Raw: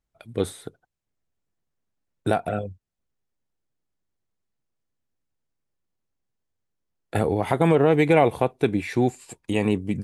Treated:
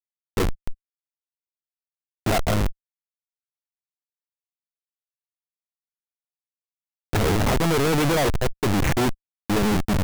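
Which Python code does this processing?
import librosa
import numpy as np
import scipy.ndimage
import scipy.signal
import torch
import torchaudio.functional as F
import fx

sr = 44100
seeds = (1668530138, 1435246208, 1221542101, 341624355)

y = fx.schmitt(x, sr, flips_db=-27.5)
y = fx.leveller(y, sr, passes=5)
y = F.gain(torch.from_numpy(y), 1.5).numpy()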